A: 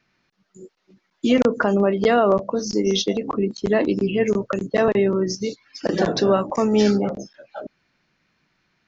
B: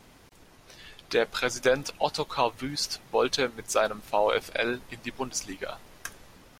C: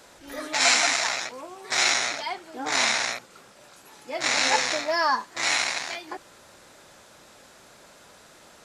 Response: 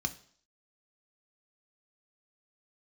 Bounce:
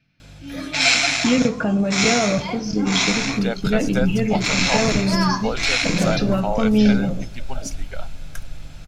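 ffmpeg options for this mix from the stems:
-filter_complex "[0:a]volume=-3dB,asplit=3[a][b][c];[b]volume=-5dB[d];[1:a]aecho=1:1:1.4:0.59,asubboost=boost=10:cutoff=59,adelay=2300,volume=-3dB[e];[2:a]aeval=exprs='val(0)+0.00178*(sin(2*PI*50*n/s)+sin(2*PI*2*50*n/s)/2+sin(2*PI*3*50*n/s)/3+sin(2*PI*4*50*n/s)/4+sin(2*PI*5*50*n/s)/5)':c=same,adelay=200,volume=1.5dB,asplit=2[f][g];[g]volume=-3dB[h];[c]apad=whole_len=390168[i];[f][i]sidechaincompress=threshold=-26dB:ratio=8:attack=16:release=390[j];[3:a]atrim=start_sample=2205[k];[d][h]amix=inputs=2:normalize=0[l];[l][k]afir=irnorm=-1:irlink=0[m];[a][e][j][m]amix=inputs=4:normalize=0,lowshelf=f=360:g=6"

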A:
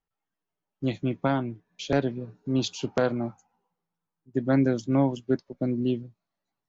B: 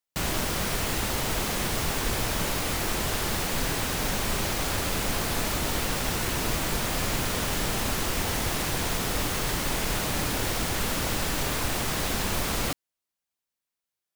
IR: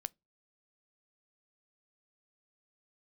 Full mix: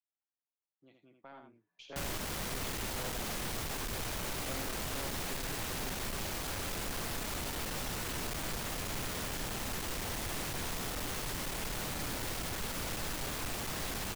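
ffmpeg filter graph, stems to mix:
-filter_complex "[0:a]acompressor=threshold=-49dB:ratio=1.5,bandpass=f=1.4k:t=q:w=0.57:csg=0,volume=-7.5dB,afade=t=in:st=1.14:d=0.5:silence=0.298538,asplit=2[a][b];[b]volume=-5.5dB[c];[1:a]asoftclip=type=hard:threshold=-29.5dB,adelay=1800,volume=-6dB[d];[c]aecho=0:1:78:1[e];[a][d][e]amix=inputs=3:normalize=0,aeval=exprs='0.0398*(cos(1*acos(clip(val(0)/0.0398,-1,1)))-cos(1*PI/2))+0.00224*(cos(6*acos(clip(val(0)/0.0398,-1,1)))-cos(6*PI/2))':c=same"

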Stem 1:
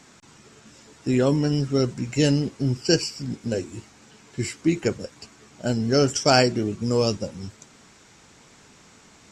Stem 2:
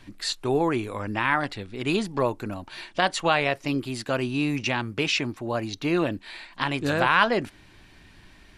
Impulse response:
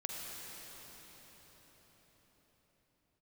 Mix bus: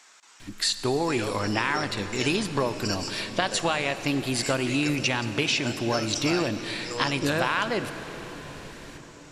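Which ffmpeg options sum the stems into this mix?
-filter_complex "[0:a]highpass=910,acompressor=threshold=-30dB:ratio=6,volume=-2dB,asplit=2[a][b];[b]volume=-9dB[c];[1:a]highshelf=f=3.8k:g=7.5,acompressor=threshold=-26dB:ratio=6,adelay=400,volume=1.5dB,asplit=2[d][e];[e]volume=-6.5dB[f];[2:a]atrim=start_sample=2205[g];[c][f]amix=inputs=2:normalize=0[h];[h][g]afir=irnorm=-1:irlink=0[i];[a][d][i]amix=inputs=3:normalize=0"

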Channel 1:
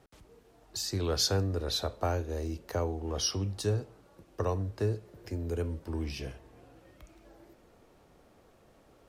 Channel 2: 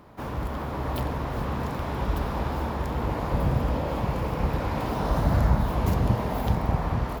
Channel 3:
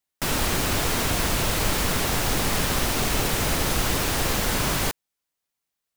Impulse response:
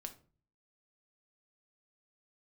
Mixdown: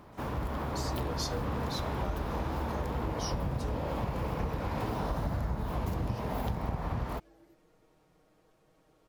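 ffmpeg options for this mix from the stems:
-filter_complex "[0:a]aecho=1:1:6.4:0.64,volume=-9dB,asplit=2[a][b];[b]volume=-7.5dB[c];[1:a]volume=-2dB[d];[3:a]atrim=start_sample=2205[e];[c][e]afir=irnorm=-1:irlink=0[f];[a][d][f]amix=inputs=3:normalize=0,acompressor=threshold=-29dB:ratio=6"

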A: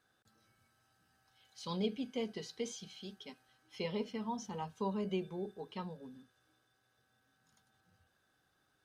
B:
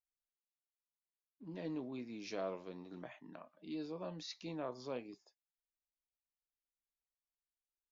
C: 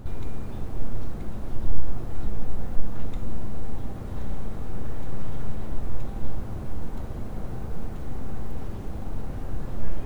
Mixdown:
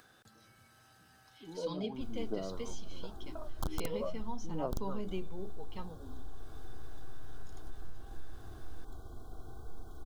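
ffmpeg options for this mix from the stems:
-filter_complex "[0:a]acompressor=mode=upward:threshold=-45dB:ratio=2.5,volume=-3.5dB[a];[1:a]lowpass=f=1.9k:w=0.5412,lowpass=f=1.9k:w=1.3066,aphaser=in_gain=1:out_gain=1:delay=3.4:decay=0.79:speed=0.43:type=triangular,volume=1.5dB[b];[2:a]tiltshelf=f=970:g=-3.5,aecho=1:1:2.7:0.72,aeval=exprs='(mod(2.66*val(0)+1,2)-1)/2.66':c=same,adelay=1950,volume=-14dB[c];[b][c]amix=inputs=2:normalize=0,asuperstop=centerf=2200:order=20:qfactor=1.4,acompressor=threshold=-31dB:ratio=6,volume=0dB[d];[a][d]amix=inputs=2:normalize=0"

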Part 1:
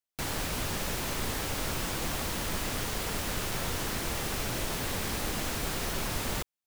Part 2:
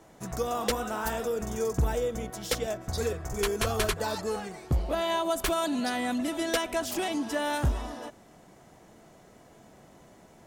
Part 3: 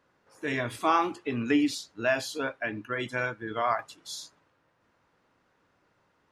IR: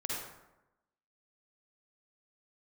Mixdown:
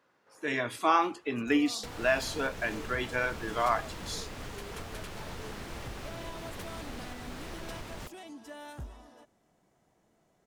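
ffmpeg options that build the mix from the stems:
-filter_complex "[0:a]aemphasis=mode=reproduction:type=50kf,adelay=1650,volume=-6dB[a];[1:a]adelay=1150,volume=-16dB[b];[2:a]highpass=f=240:p=1,volume=0dB[c];[a][b]amix=inputs=2:normalize=0,alimiter=level_in=6dB:limit=-24dB:level=0:latency=1:release=315,volume=-6dB,volume=0dB[d];[c][d]amix=inputs=2:normalize=0"

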